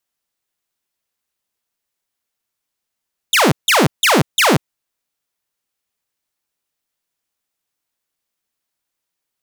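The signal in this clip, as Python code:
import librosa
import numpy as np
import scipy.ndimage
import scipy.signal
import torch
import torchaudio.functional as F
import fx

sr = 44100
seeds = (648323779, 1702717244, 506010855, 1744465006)

y = fx.laser_zaps(sr, level_db=-7.0, start_hz=3900.0, end_hz=110.0, length_s=0.19, wave='saw', shots=4, gap_s=0.16)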